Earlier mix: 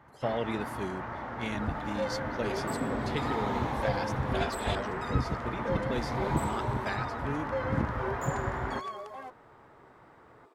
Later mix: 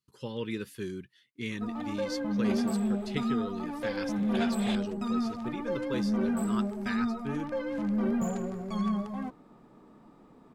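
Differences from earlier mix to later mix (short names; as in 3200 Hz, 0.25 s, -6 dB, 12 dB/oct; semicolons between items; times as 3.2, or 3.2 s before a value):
speech: add Butterworth band-stop 680 Hz, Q 1.6; first sound: muted; second sound: remove steep high-pass 340 Hz 48 dB/oct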